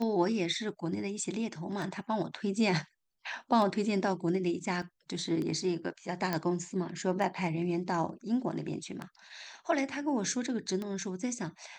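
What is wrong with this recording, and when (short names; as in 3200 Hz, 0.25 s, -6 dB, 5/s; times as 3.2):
tick 33 1/3 rpm -24 dBFS
4.82 gap 3.1 ms
6.33 pop -16 dBFS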